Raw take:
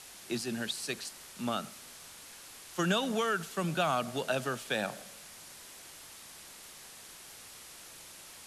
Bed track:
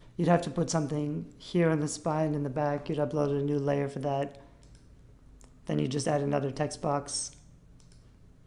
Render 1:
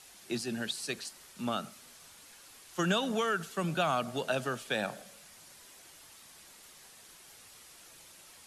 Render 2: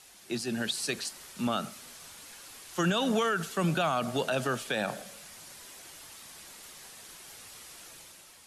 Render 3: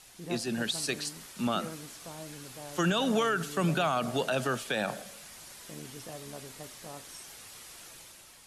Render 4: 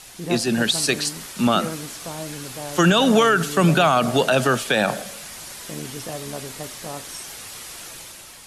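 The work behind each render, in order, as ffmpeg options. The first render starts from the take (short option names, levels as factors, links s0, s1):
-af "afftdn=nr=6:nf=-51"
-af "dynaudnorm=f=120:g=9:m=2,alimiter=limit=0.112:level=0:latency=1:release=35"
-filter_complex "[1:a]volume=0.15[s0];[0:a][s0]amix=inputs=2:normalize=0"
-af "volume=3.76"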